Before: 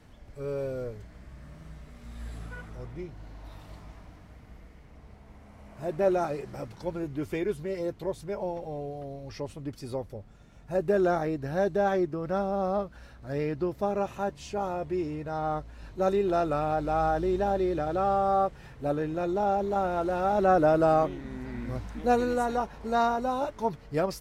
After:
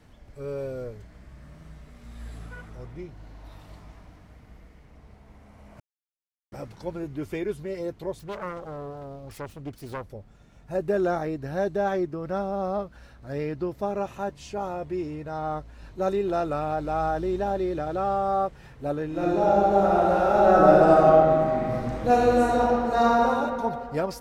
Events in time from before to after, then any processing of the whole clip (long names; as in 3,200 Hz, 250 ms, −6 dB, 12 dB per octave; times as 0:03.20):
0:05.80–0:06.52: silence
0:08.19–0:10.03: phase distortion by the signal itself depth 0.55 ms
0:19.06–0:23.27: thrown reverb, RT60 2.4 s, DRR −5 dB